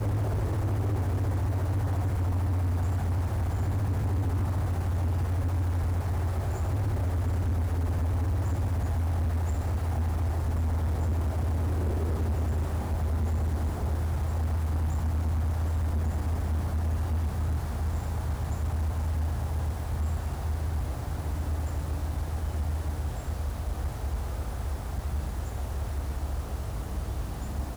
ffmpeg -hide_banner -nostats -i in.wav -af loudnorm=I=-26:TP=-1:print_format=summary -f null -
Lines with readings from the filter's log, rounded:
Input Integrated:    -30.4 LUFS
Input True Peak:     -23.9 dBTP
Input LRA:             5.5 LU
Input Threshold:     -40.4 LUFS